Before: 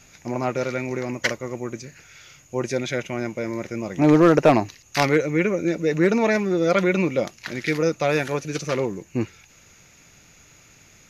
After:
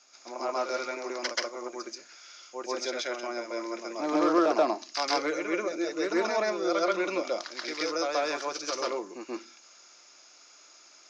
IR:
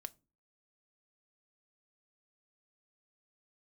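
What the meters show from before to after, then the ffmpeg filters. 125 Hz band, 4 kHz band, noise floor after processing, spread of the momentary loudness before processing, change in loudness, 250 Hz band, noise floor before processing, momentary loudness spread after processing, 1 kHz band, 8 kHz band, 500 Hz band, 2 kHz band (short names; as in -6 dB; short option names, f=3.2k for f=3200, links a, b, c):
under -30 dB, 0.0 dB, -56 dBFS, 13 LU, -7.5 dB, -10.5 dB, -53 dBFS, 14 LU, -3.5 dB, n/a, -7.5 dB, -7.5 dB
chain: -filter_complex "[0:a]highpass=f=370:w=0.5412,highpass=f=370:w=1.3066,equalizer=f=440:t=q:w=4:g=-8,equalizer=f=1.2k:t=q:w=4:g=5,equalizer=f=1.9k:t=q:w=4:g=-7,equalizer=f=2.6k:t=q:w=4:g=-5,equalizer=f=5.1k:t=q:w=4:g=10,lowpass=f=6.8k:w=0.5412,lowpass=f=6.8k:w=1.3066,asplit=2[a][b];[1:a]atrim=start_sample=2205,adelay=132[c];[b][c]afir=irnorm=-1:irlink=0,volume=9dB[d];[a][d]amix=inputs=2:normalize=0,acrossover=split=490[e][f];[f]acompressor=threshold=-19dB:ratio=2.5[g];[e][g]amix=inputs=2:normalize=0,volume=-8dB"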